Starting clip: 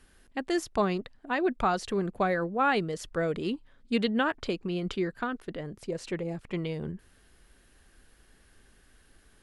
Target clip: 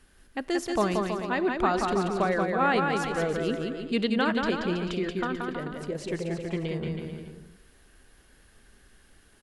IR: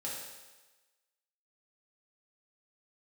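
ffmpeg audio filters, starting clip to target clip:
-filter_complex "[0:a]aecho=1:1:180|324|439.2|531.4|605.1:0.631|0.398|0.251|0.158|0.1,asplit=2[link_01][link_02];[1:a]atrim=start_sample=2205,asetrate=33516,aresample=44100[link_03];[link_02][link_03]afir=irnorm=-1:irlink=0,volume=-21dB[link_04];[link_01][link_04]amix=inputs=2:normalize=0"

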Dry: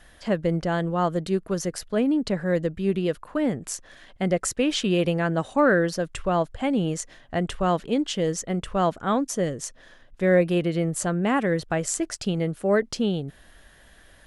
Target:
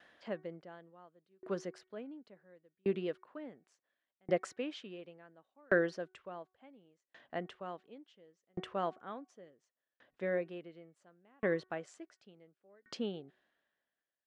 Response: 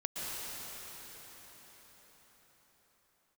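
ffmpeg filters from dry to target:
-af "highpass=260,lowpass=3500,bandreject=frequency=372.2:width_type=h:width=4,bandreject=frequency=744.4:width_type=h:width=4,bandreject=frequency=1116.6:width_type=h:width=4,bandreject=frequency=1488.8:width_type=h:width=4,bandreject=frequency=1861:width_type=h:width=4,bandreject=frequency=2233.2:width_type=h:width=4,aeval=exprs='val(0)*pow(10,-40*if(lt(mod(0.7*n/s,1),2*abs(0.7)/1000),1-mod(0.7*n/s,1)/(2*abs(0.7)/1000),(mod(0.7*n/s,1)-2*abs(0.7)/1000)/(1-2*abs(0.7)/1000))/20)':channel_layout=same,volume=-5dB"

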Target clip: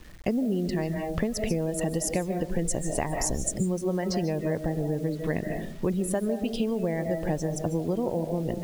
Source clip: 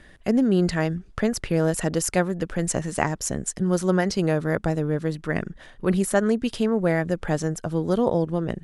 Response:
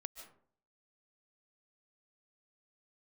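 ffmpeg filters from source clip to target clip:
-filter_complex "[0:a]equalizer=frequency=1400:width_type=o:width=0.48:gain=-13[link_01];[1:a]atrim=start_sample=2205[link_02];[link_01][link_02]afir=irnorm=-1:irlink=0,asettb=1/sr,asplit=3[link_03][link_04][link_05];[link_03]atrim=end=2.304[link_06];[link_04]atrim=start=2.3:end=3.56,asetpts=PTS-STARTPTS,afade=type=in:duration=0.004:curve=qsin,afade=type=out:start_time=1.256:duration=0.004:curve=qsin,asubboost=boost=10:cutoff=74[link_07];[link_05]atrim=start=3.556[link_08];[link_06][link_07]acrossfade=duration=0.004:curve1=hsin:curve2=qsin[link_09];[link_09][link_08]acrossfade=duration=0.004:curve1=qsin:curve2=hsin,acompressor=threshold=-32dB:ratio=20,afftdn=noise_reduction=17:noise_floor=-52,acrusher=bits=9:mix=0:aa=0.000001,volume=9dB"

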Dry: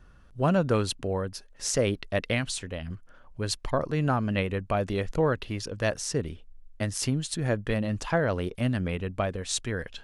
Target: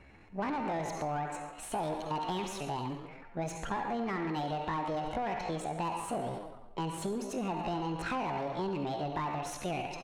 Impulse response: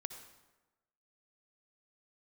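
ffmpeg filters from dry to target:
-filter_complex "[0:a]aresample=16000,asoftclip=type=tanh:threshold=-24dB,aresample=44100,bandreject=frequency=3100:width=7.1,asplit=4[link_01][link_02][link_03][link_04];[link_02]adelay=135,afreqshift=120,volume=-20dB[link_05];[link_03]adelay=270,afreqshift=240,volume=-27.1dB[link_06];[link_04]adelay=405,afreqshift=360,volume=-34.3dB[link_07];[link_01][link_05][link_06][link_07]amix=inputs=4:normalize=0[link_08];[1:a]atrim=start_sample=2205,asetrate=52920,aresample=44100[link_09];[link_08][link_09]afir=irnorm=-1:irlink=0,deesser=0.85,asetrate=68011,aresample=44100,atempo=0.64842,asplit=2[link_10][link_11];[link_11]highpass=frequency=720:poles=1,volume=16dB,asoftclip=type=tanh:threshold=-23.5dB[link_12];[link_10][link_12]amix=inputs=2:normalize=0,lowpass=frequency=1200:poles=1,volume=-6dB,acompressor=threshold=-35dB:ratio=6,volume=3.5dB"

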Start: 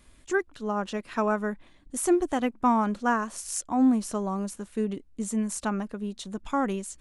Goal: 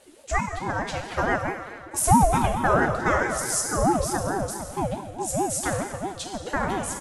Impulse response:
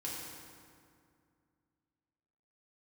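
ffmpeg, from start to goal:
-filter_complex "[0:a]aecho=1:1:5.6:0.38,asplit=2[link_01][link_02];[1:a]atrim=start_sample=2205,highshelf=frequency=2500:gain=10[link_03];[link_02][link_03]afir=irnorm=-1:irlink=0,volume=-1dB[link_04];[link_01][link_04]amix=inputs=2:normalize=0,aeval=exprs='val(0)*sin(2*PI*450*n/s+450*0.35/4.6*sin(2*PI*4.6*n/s))':channel_layout=same"

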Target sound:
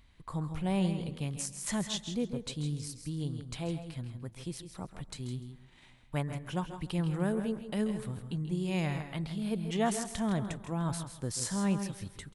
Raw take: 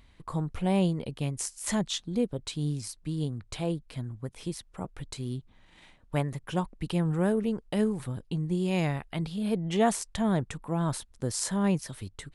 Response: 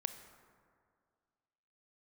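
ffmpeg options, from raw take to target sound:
-filter_complex "[0:a]equalizer=frequency=470:width_type=o:width=1.7:gain=-3.5,aecho=1:1:161:0.316,asplit=2[link_01][link_02];[1:a]atrim=start_sample=2205,adelay=136[link_03];[link_02][link_03]afir=irnorm=-1:irlink=0,volume=-12dB[link_04];[link_01][link_04]amix=inputs=2:normalize=0,volume=-3.5dB"

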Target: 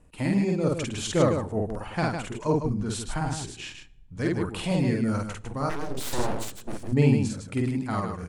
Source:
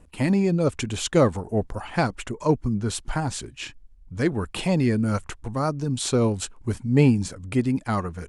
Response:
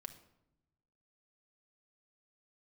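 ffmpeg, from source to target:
-filter_complex "[0:a]aecho=1:1:49.56|154.5:0.891|0.501,asplit=2[link_01][link_02];[1:a]atrim=start_sample=2205,asetrate=32193,aresample=44100[link_03];[link_02][link_03]afir=irnorm=-1:irlink=0,volume=-7dB[link_04];[link_01][link_04]amix=inputs=2:normalize=0,asplit=3[link_05][link_06][link_07];[link_05]afade=type=out:start_time=5.69:duration=0.02[link_08];[link_06]aeval=exprs='abs(val(0))':channel_layout=same,afade=type=in:start_time=5.69:duration=0.02,afade=type=out:start_time=6.91:duration=0.02[link_09];[link_07]afade=type=in:start_time=6.91:duration=0.02[link_10];[link_08][link_09][link_10]amix=inputs=3:normalize=0,volume=-8dB"

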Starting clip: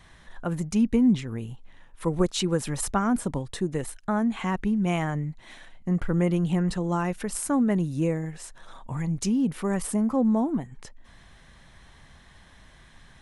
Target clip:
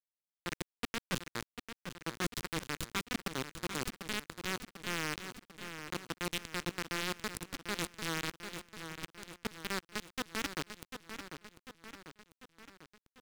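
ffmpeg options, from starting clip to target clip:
ffmpeg -i in.wav -filter_complex "[0:a]areverse,acompressor=threshold=-31dB:ratio=8,areverse,asoftclip=type=tanh:threshold=-27.5dB,acrusher=bits=4:mix=0:aa=0.000001,asplit=2[link_01][link_02];[link_02]highpass=frequency=720:poles=1,volume=33dB,asoftclip=type=tanh:threshold=-27dB[link_03];[link_01][link_03]amix=inputs=2:normalize=0,lowpass=frequency=3800:poles=1,volume=-6dB,equalizer=frequency=670:width_type=o:width=1.2:gain=-12.5,aecho=1:1:745|1490|2235|2980|3725|4470:0.251|0.141|0.0788|0.0441|0.0247|0.0138,asplit=2[link_04][link_05];[link_05]alimiter=level_in=12.5dB:limit=-24dB:level=0:latency=1:release=106,volume=-12.5dB,volume=2dB[link_06];[link_04][link_06]amix=inputs=2:normalize=0,adynamicequalizer=threshold=0.00501:dfrequency=2800:dqfactor=0.7:tfrequency=2800:tqfactor=0.7:attack=5:release=100:ratio=0.375:range=2:mode=boostabove:tftype=highshelf,volume=1dB" out.wav

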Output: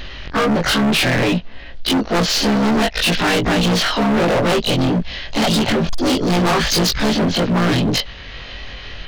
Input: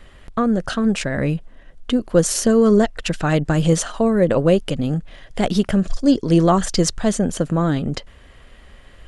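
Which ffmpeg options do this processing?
ffmpeg -i in.wav -filter_complex "[0:a]afftfilt=real='re':imag='-im':win_size=2048:overlap=0.75,equalizer=frequency=3300:width=0.71:gain=10,acompressor=mode=upward:threshold=-41dB:ratio=2.5,aresample=11025,aeval=exprs='0.631*sin(PI/2*3.16*val(0)/0.631)':channel_layout=same,aresample=44100,asplit=2[link_01][link_02];[link_02]asetrate=58866,aresample=44100,atempo=0.749154,volume=-6dB[link_03];[link_01][link_03]amix=inputs=2:normalize=0,asoftclip=type=hard:threshold=-13dB,volume=-1dB" out.wav

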